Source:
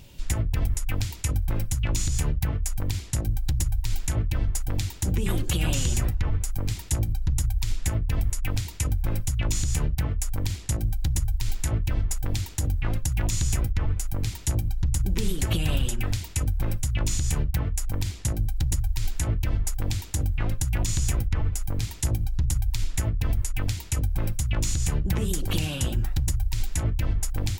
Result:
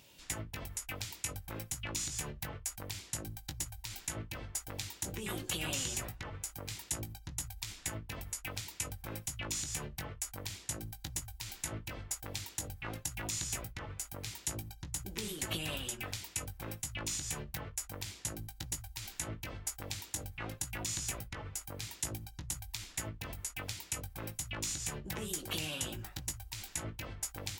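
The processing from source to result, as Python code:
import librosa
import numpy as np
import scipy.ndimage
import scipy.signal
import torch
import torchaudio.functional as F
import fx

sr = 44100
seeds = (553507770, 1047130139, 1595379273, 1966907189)

y = fx.highpass(x, sr, hz=510.0, slope=6)
y = fx.doubler(y, sr, ms=19.0, db=-9)
y = y * 10.0 ** (-5.5 / 20.0)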